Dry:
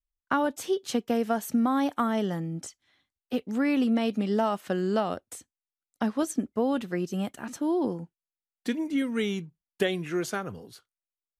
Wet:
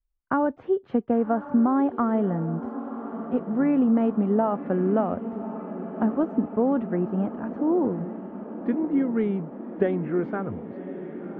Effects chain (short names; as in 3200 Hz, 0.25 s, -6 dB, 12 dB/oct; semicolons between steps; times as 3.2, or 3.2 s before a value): Bessel low-pass 1100 Hz, order 4; low shelf 88 Hz +7 dB; diffused feedback echo 1.125 s, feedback 68%, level -12 dB; gain +3.5 dB